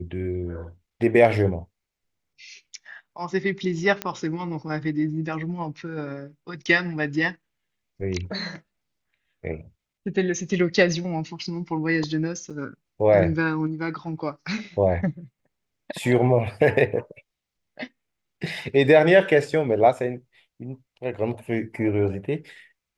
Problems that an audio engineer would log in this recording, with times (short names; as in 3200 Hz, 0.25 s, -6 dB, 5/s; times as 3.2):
4.02 pop -11 dBFS
12.5–12.51 gap 6.1 ms